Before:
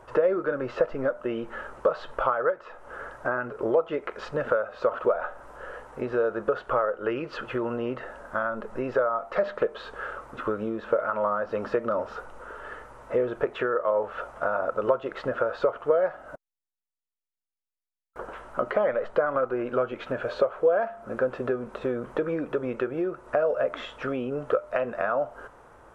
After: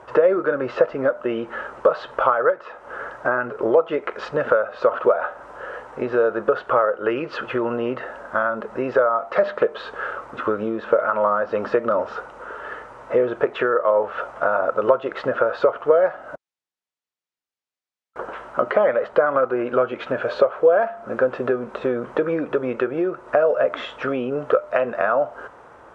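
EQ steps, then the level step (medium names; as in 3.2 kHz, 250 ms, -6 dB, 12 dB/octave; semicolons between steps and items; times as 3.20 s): high-pass 58 Hz; distance through air 69 m; bass shelf 190 Hz -7 dB; +7.5 dB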